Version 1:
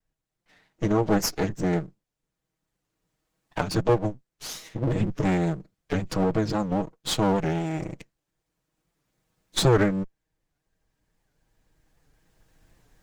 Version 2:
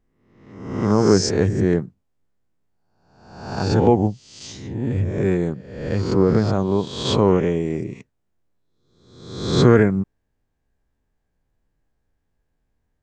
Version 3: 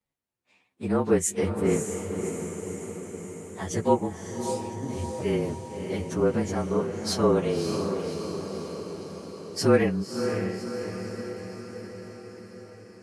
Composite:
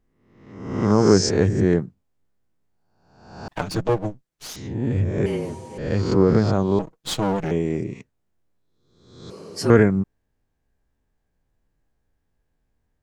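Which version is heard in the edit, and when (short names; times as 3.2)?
2
3.48–4.56 from 1
5.26–5.78 from 3
6.79–7.51 from 1
9.3–9.7 from 3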